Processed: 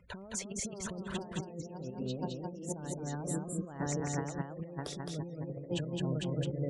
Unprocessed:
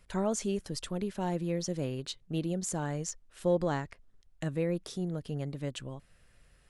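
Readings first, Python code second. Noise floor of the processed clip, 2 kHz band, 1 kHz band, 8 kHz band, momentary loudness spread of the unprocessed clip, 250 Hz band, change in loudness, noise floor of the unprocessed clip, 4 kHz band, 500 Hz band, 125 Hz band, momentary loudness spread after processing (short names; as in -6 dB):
-48 dBFS, -1.5 dB, -4.0 dB, -0.5 dB, 9 LU, -3.5 dB, -4.0 dB, -64 dBFS, -2.0 dB, -6.5 dB, -1.0 dB, 6 LU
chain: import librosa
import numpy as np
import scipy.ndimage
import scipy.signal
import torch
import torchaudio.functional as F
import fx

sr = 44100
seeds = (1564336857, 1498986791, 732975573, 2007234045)

p1 = fx.reverse_delay_fb(x, sr, ms=500, feedback_pct=47, wet_db=-2.0)
p2 = 10.0 ** (-26.5 / 20.0) * (np.abs((p1 / 10.0 ** (-26.5 / 20.0) + 3.0) % 4.0 - 2.0) - 1.0)
p3 = p1 + F.gain(torch.from_numpy(p2), -8.0).numpy()
p4 = fx.spec_gate(p3, sr, threshold_db=-25, keep='strong')
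p5 = scipy.signal.sosfilt(scipy.signal.butter(2, 68.0, 'highpass', fs=sr, output='sos'), p4)
p6 = fx.high_shelf(p5, sr, hz=2100.0, db=-9.0)
p7 = fx.over_compress(p6, sr, threshold_db=-36.0, ratio=-0.5)
p8 = fx.spec_repair(p7, sr, seeds[0], start_s=3.27, length_s=0.3, low_hz=840.0, high_hz=7100.0, source='after')
p9 = p8 + fx.echo_single(p8, sr, ms=214, db=-3.0, dry=0)
y = F.gain(torch.from_numpy(p9), -2.5).numpy()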